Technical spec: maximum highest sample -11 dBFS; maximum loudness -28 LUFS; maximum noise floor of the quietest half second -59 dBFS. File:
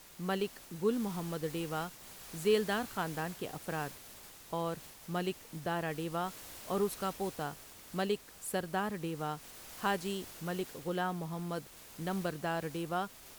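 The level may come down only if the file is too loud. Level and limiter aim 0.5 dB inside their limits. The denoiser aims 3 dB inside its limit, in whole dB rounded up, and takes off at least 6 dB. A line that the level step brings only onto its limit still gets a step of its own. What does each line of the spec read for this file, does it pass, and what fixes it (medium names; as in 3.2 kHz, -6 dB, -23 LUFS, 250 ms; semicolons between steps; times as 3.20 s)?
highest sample -17.5 dBFS: pass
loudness -37.0 LUFS: pass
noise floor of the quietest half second -53 dBFS: fail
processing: noise reduction 9 dB, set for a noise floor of -53 dBFS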